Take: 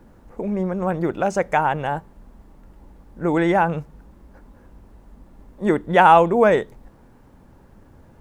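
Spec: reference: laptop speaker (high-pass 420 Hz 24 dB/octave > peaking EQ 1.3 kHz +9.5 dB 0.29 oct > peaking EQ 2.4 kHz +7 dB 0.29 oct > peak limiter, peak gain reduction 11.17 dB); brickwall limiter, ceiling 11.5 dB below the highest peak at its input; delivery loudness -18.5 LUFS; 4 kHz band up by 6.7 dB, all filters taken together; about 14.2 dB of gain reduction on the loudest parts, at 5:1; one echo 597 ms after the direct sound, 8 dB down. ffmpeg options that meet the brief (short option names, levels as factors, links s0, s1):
-af "equalizer=f=4000:t=o:g=8,acompressor=threshold=0.0631:ratio=5,alimiter=level_in=1.06:limit=0.0631:level=0:latency=1,volume=0.944,highpass=f=420:w=0.5412,highpass=f=420:w=1.3066,equalizer=f=1300:t=o:w=0.29:g=9.5,equalizer=f=2400:t=o:w=0.29:g=7,aecho=1:1:597:0.398,volume=15,alimiter=limit=0.376:level=0:latency=1"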